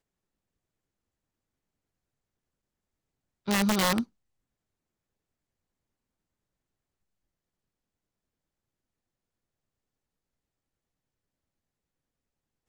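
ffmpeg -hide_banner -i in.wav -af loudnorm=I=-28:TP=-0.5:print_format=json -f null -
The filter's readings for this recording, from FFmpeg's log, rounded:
"input_i" : "-26.4",
"input_tp" : "-15.8",
"input_lra" : "17.3",
"input_thresh" : "-37.3",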